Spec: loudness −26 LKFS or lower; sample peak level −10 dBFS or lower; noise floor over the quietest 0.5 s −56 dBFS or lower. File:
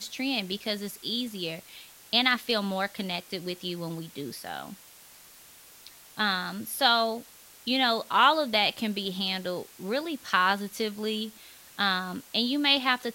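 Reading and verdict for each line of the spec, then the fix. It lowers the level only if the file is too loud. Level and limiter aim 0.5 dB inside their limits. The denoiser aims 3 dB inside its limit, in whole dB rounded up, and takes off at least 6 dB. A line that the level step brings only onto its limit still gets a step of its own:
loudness −27.5 LKFS: in spec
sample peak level −7.5 dBFS: out of spec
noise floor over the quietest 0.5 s −52 dBFS: out of spec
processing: broadband denoise 7 dB, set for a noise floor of −52 dBFS
brickwall limiter −10.5 dBFS

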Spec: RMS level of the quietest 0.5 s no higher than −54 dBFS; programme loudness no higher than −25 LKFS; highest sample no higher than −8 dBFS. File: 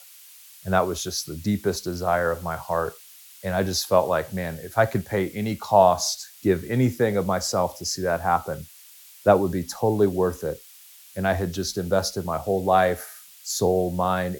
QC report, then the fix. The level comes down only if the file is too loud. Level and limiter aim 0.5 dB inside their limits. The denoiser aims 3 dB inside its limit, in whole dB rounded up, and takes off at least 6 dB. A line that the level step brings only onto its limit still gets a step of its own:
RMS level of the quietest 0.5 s −49 dBFS: out of spec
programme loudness −24.0 LKFS: out of spec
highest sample −3.0 dBFS: out of spec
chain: broadband denoise 7 dB, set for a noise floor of −49 dBFS
level −1.5 dB
brickwall limiter −8.5 dBFS

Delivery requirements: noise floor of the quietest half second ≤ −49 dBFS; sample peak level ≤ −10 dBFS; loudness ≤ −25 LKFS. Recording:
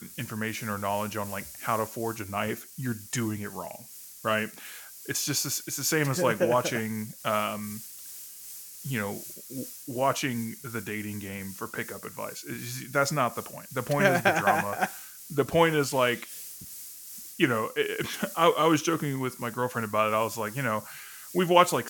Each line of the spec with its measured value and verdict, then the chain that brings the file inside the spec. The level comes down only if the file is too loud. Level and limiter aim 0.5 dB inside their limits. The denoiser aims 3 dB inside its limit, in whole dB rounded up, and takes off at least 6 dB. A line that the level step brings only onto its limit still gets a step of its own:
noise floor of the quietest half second −46 dBFS: out of spec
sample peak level −4.5 dBFS: out of spec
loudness −28.5 LKFS: in spec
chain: broadband denoise 6 dB, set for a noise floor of −46 dBFS
brickwall limiter −10.5 dBFS

